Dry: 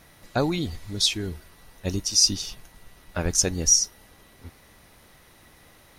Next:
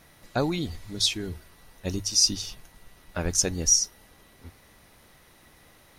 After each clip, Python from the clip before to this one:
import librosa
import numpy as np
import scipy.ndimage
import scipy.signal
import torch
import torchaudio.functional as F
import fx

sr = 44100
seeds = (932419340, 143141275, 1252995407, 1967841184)

y = fx.hum_notches(x, sr, base_hz=50, count=2)
y = y * librosa.db_to_amplitude(-2.0)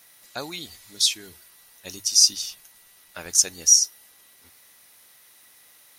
y = fx.tilt_eq(x, sr, slope=4.0)
y = y * librosa.db_to_amplitude(-5.0)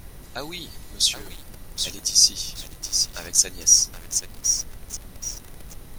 y = fx.dmg_noise_colour(x, sr, seeds[0], colour='brown', level_db=-39.0)
y = fx.echo_crushed(y, sr, ms=774, feedback_pct=35, bits=6, wet_db=-6)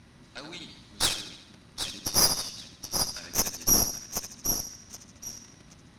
y = fx.cabinet(x, sr, low_hz=100.0, low_slope=12, high_hz=7800.0, hz=(230.0, 460.0, 740.0, 7400.0), db=(5, -9, -5, -9))
y = fx.echo_feedback(y, sr, ms=75, feedback_pct=52, wet_db=-8.0)
y = fx.cheby_harmonics(y, sr, harmonics=(6,), levels_db=(-10,), full_scale_db=-4.5)
y = y * librosa.db_to_amplitude(-6.5)